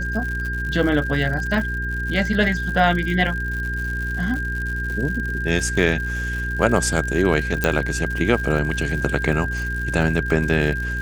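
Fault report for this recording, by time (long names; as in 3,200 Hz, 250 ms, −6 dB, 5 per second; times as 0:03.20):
surface crackle 130 per second −28 dBFS
mains hum 60 Hz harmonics 7 −27 dBFS
whistle 1,600 Hz −26 dBFS
0:07.64: click −5 dBFS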